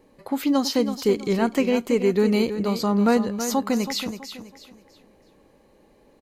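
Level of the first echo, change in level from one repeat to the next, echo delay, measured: −10.0 dB, −10.0 dB, 326 ms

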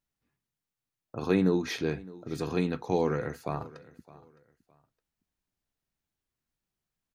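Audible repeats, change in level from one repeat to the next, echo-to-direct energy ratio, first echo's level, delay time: 2, −11.5 dB, −20.0 dB, −20.5 dB, 613 ms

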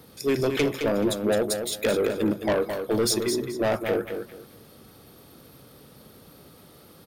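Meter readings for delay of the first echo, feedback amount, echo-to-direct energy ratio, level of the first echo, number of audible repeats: 215 ms, 24%, −6.5 dB, −7.0 dB, 3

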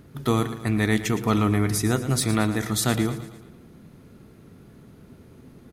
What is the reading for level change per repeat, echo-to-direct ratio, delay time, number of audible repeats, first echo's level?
−5.5 dB, −11.5 dB, 113 ms, 4, −13.0 dB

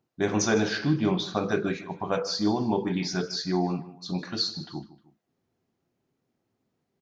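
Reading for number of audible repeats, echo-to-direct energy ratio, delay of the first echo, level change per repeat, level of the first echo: 2, −16.0 dB, 154 ms, −7.0 dB, −17.0 dB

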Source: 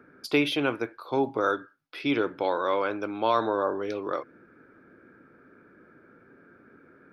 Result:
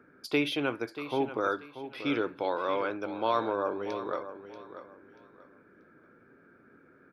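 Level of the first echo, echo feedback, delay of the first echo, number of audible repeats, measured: −12.0 dB, 26%, 635 ms, 2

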